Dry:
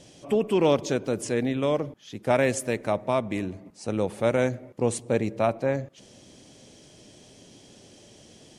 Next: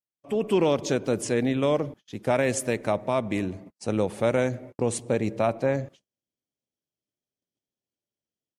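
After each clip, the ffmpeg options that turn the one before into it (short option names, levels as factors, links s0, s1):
-af "agate=range=0.00447:threshold=0.00631:ratio=16:detection=peak,alimiter=limit=0.188:level=0:latency=1:release=126,dynaudnorm=f=250:g=3:m=3.98,volume=0.355"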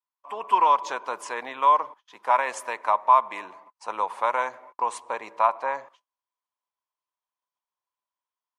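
-af "highpass=f=1000:t=q:w=12,highshelf=f=4300:g=-10.5"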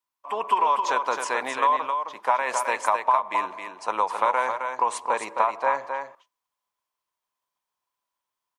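-af "acompressor=threshold=0.0708:ratio=10,aecho=1:1:264:0.501,volume=1.88"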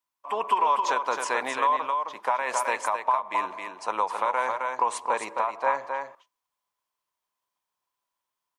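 -af "alimiter=limit=0.251:level=0:latency=1:release=380"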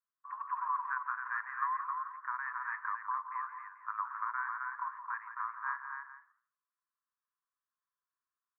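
-af "flanger=delay=4.3:depth=7.8:regen=90:speed=1.4:shape=sinusoidal,asuperpass=centerf=1400:order=8:qfactor=1.9,aecho=1:1:170:0.299"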